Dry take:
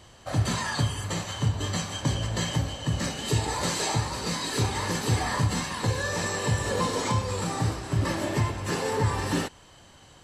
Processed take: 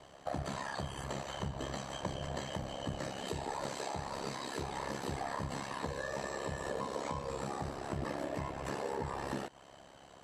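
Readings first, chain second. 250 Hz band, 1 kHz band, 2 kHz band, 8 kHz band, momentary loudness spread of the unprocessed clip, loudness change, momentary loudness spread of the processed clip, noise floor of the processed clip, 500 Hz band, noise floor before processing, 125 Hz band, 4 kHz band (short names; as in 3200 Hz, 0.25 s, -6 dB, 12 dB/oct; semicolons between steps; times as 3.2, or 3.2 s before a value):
-11.0 dB, -8.0 dB, -11.5 dB, -16.0 dB, 3 LU, -12.0 dB, 2 LU, -57 dBFS, -7.5 dB, -52 dBFS, -16.5 dB, -14.0 dB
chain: HPF 260 Hz 6 dB/oct; bell 660 Hz +7 dB 0.36 oct; compressor 5:1, threshold -34 dBFS, peak gain reduction 10.5 dB; ring modulator 34 Hz; high shelf 2000 Hz -9.5 dB; gain +2.5 dB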